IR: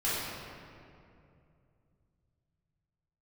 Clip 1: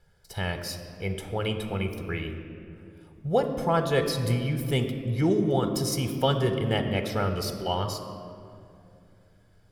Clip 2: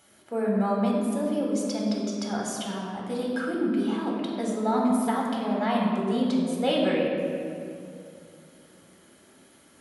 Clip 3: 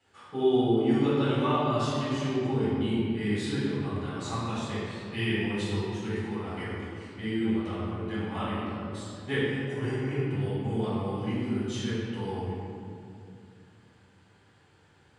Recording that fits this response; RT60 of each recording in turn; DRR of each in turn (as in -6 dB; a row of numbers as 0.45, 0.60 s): 3; 2.6, 2.6, 2.6 s; 6.5, -2.5, -11.5 dB